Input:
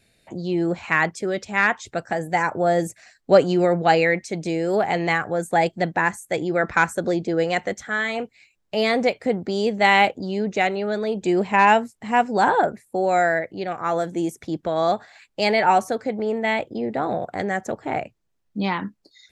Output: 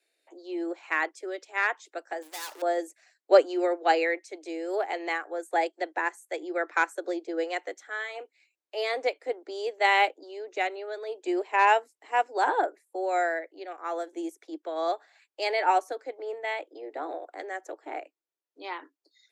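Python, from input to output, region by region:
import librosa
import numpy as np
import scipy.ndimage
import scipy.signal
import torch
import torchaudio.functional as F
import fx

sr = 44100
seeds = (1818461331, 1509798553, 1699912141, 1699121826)

y = fx.chain(x, sr, fx.median_filter(points=15),
    fx.leveller(passes=5),
    fx.pre_emphasis(coefficient=0.9), at=(2.22, 2.62))
y = scipy.signal.sosfilt(scipy.signal.butter(16, 290.0, 'highpass', fs=sr, output='sos'), y)
y = fx.upward_expand(y, sr, threshold_db=-28.0, expansion=1.5)
y = y * 10.0 ** (-3.0 / 20.0)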